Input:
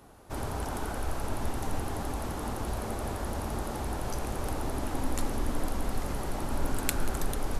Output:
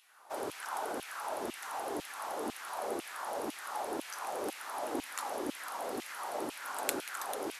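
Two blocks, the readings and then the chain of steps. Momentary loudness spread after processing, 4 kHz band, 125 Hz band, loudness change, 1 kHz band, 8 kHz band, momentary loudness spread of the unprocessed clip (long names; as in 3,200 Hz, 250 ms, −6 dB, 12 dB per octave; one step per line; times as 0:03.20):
3 LU, −1.5 dB, −26.5 dB, −4.0 dB, −0.5 dB, −3.0 dB, 3 LU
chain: auto-filter high-pass saw down 2 Hz 290–2,900 Hz
level −3 dB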